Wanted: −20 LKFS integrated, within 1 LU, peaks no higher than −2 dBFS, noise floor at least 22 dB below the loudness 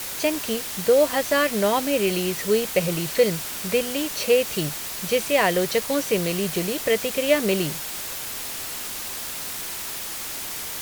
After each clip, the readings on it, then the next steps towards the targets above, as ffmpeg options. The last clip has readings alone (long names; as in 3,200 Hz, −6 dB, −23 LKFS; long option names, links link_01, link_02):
background noise floor −32 dBFS; target noise floor −46 dBFS; integrated loudness −23.5 LKFS; sample peak −6.0 dBFS; target loudness −20.0 LKFS
→ -af "afftdn=noise_reduction=14:noise_floor=-32"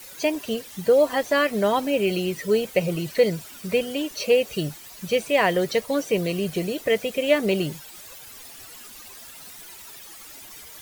background noise floor −43 dBFS; target noise floor −46 dBFS
→ -af "afftdn=noise_reduction=6:noise_floor=-43"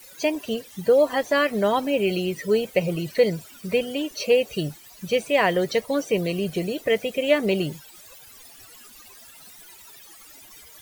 background noise floor −48 dBFS; integrated loudness −23.5 LKFS; sample peak −7.0 dBFS; target loudness −20.0 LKFS
→ -af "volume=3.5dB"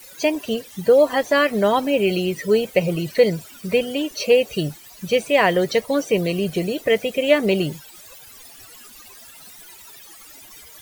integrated loudness −20.0 LKFS; sample peak −3.5 dBFS; background noise floor −44 dBFS